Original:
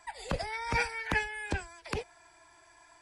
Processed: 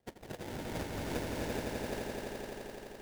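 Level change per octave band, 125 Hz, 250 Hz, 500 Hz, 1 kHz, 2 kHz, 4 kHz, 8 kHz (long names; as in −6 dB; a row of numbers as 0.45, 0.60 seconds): −2.0, +3.5, +1.0, −8.0, −11.5, −4.0, −1.0 decibels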